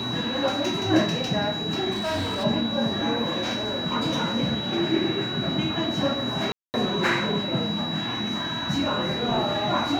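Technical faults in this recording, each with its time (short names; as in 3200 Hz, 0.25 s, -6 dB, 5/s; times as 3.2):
tone 3900 Hz -30 dBFS
1.91–2.45 clipped -23.5 dBFS
6.52–6.74 gap 0.219 s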